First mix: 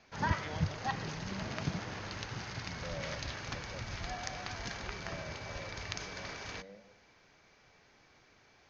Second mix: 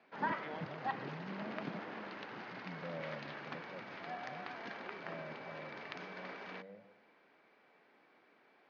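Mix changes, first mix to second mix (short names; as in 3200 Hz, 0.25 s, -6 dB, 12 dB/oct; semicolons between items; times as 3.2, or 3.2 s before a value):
background: add HPF 220 Hz 24 dB/oct; master: add air absorption 390 m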